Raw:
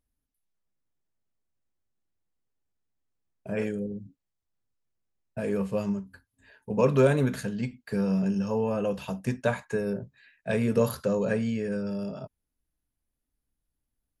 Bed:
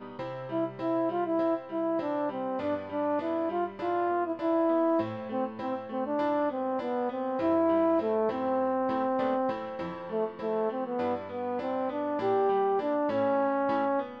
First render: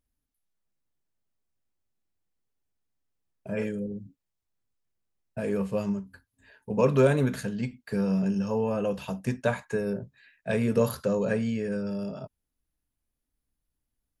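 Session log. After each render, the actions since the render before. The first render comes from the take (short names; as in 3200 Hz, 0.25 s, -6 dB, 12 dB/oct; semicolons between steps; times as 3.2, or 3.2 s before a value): 3.48–3.88 notch comb 370 Hz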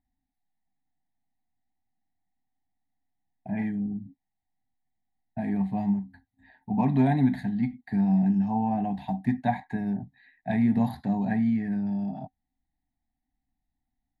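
EQ curve 130 Hz 0 dB, 270 Hz +7 dB, 520 Hz -25 dB, 760 Hz +15 dB, 1300 Hz -22 dB, 1900 Hz +6 dB, 2800 Hz -16 dB, 3900 Hz -2 dB, 5600 Hz -24 dB, 12000 Hz -17 dB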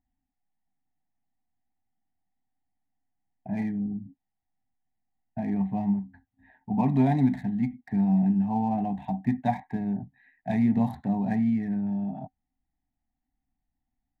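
Wiener smoothing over 9 samples; dynamic EQ 1600 Hz, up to -6 dB, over -57 dBFS, Q 5.5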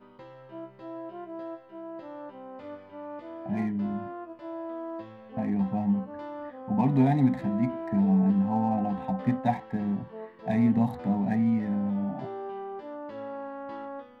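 add bed -11 dB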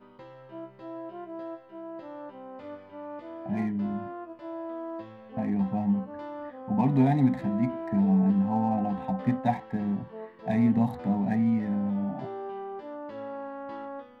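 nothing audible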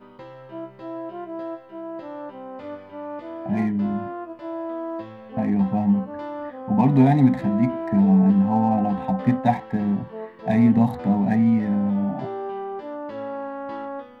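gain +6.5 dB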